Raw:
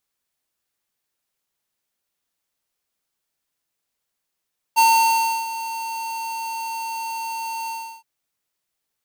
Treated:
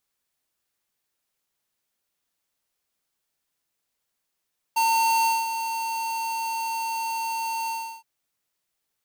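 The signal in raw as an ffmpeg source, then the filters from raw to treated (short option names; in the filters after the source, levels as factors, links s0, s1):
-f lavfi -i "aevalsrc='0.211*(2*lt(mod(907*t,1),0.5)-1)':d=3.268:s=44100,afade=t=in:d=0.026,afade=t=out:st=0.026:d=0.67:silence=0.178,afade=t=out:st=2.93:d=0.338"
-af "alimiter=limit=0.0891:level=0:latency=1"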